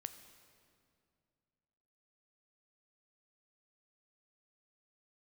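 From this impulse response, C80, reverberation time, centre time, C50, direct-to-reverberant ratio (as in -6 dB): 11.5 dB, 2.4 s, 18 ms, 10.5 dB, 9.0 dB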